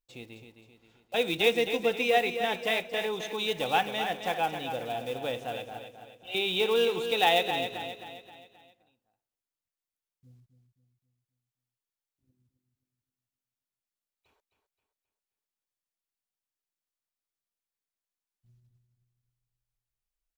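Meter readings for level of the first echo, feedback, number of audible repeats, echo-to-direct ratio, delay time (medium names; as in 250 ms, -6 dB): -8.5 dB, 45%, 4, -7.5 dB, 264 ms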